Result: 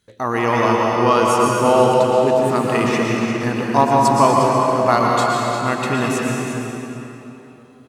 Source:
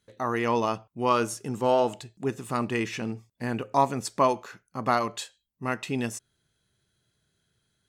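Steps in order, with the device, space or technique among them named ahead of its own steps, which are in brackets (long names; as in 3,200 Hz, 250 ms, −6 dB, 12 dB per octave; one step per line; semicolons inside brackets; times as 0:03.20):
cave (single-tap delay 353 ms −10 dB; convolution reverb RT60 3.5 s, pre-delay 108 ms, DRR −2.5 dB)
level +6.5 dB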